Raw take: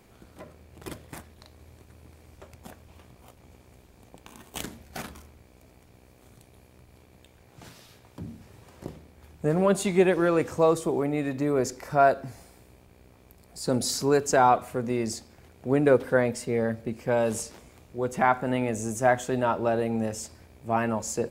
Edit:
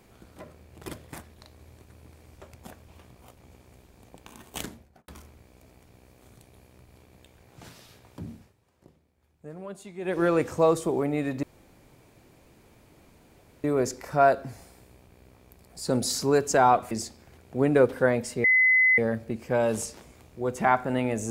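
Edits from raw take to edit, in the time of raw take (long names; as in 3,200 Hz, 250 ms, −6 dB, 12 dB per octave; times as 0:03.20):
0:04.61–0:05.08: fade out and dull
0:08.32–0:10.23: duck −17.5 dB, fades 0.22 s
0:11.43: splice in room tone 2.21 s
0:14.70–0:15.02: remove
0:16.55: insert tone 2,030 Hz −16.5 dBFS 0.54 s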